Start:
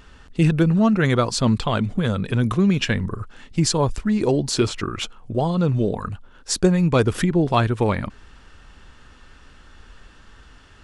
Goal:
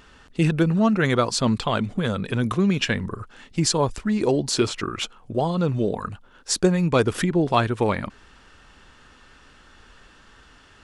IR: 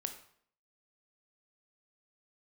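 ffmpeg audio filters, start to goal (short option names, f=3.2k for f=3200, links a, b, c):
-af "lowshelf=f=130:g=-9"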